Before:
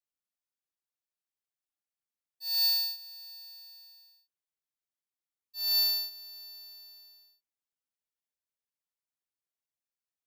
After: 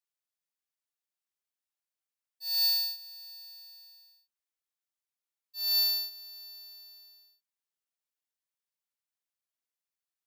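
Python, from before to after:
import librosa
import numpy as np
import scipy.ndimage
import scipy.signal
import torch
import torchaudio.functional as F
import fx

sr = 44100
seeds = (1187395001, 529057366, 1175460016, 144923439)

y = fx.low_shelf(x, sr, hz=390.0, db=-11.0)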